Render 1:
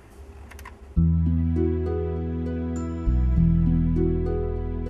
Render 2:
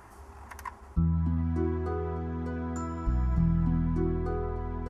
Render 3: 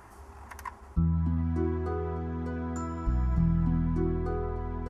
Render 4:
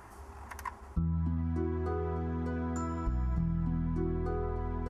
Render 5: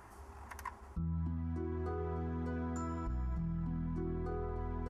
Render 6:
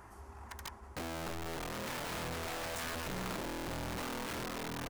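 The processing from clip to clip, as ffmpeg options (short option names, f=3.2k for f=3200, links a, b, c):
-af "firequalizer=gain_entry='entry(490,0);entry(940,13);entry(2700,-2);entry(5500,5)':delay=0.05:min_phase=1,volume=-6dB"
-af anull
-af "acompressor=threshold=-29dB:ratio=3"
-af "alimiter=level_in=3dB:limit=-24dB:level=0:latency=1:release=12,volume=-3dB,volume=-4dB"
-af "aeval=exprs='(mod(63.1*val(0)+1,2)-1)/63.1':c=same,volume=1dB"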